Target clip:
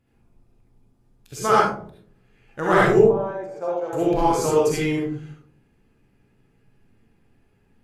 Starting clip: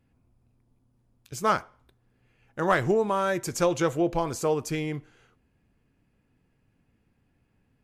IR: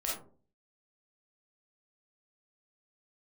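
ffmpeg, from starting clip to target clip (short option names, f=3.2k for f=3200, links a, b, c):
-filter_complex "[0:a]asettb=1/sr,asplit=3[a][b][c];[a]atrim=end=2.984[d];[b]atrim=start=2.98:end=3.93,asetpts=PTS-STARTPTS,afade=t=in:d=0.004:c=qsin,afade=t=out:st=0.946:d=0.004:c=qsin,bandpass=f=670:t=q:w=3.7:csg=0[e];[c]atrim=start=3.926[f];[d][e]acrossfade=d=0.004:c1=hsin:c2=qsin[g];[g][f]acrossfade=d=0.004:c1=qsin:c2=hsin[h];[1:a]atrim=start_sample=2205,asetrate=28224,aresample=44100[i];[h][i]afir=irnorm=-1:irlink=0"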